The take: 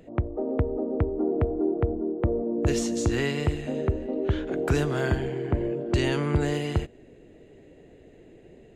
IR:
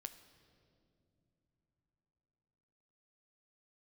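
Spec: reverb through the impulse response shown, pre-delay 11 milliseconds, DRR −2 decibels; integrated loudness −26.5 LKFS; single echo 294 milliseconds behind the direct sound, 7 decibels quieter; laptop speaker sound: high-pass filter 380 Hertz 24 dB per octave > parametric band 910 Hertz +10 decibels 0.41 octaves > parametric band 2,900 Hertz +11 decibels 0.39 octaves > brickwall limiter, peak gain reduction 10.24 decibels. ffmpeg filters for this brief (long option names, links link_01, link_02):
-filter_complex "[0:a]aecho=1:1:294:0.447,asplit=2[link_01][link_02];[1:a]atrim=start_sample=2205,adelay=11[link_03];[link_02][link_03]afir=irnorm=-1:irlink=0,volume=6.5dB[link_04];[link_01][link_04]amix=inputs=2:normalize=0,highpass=frequency=380:width=0.5412,highpass=frequency=380:width=1.3066,equalizer=frequency=910:width_type=o:width=0.41:gain=10,equalizer=frequency=2900:width_type=o:width=0.39:gain=11,volume=2dB,alimiter=limit=-18dB:level=0:latency=1"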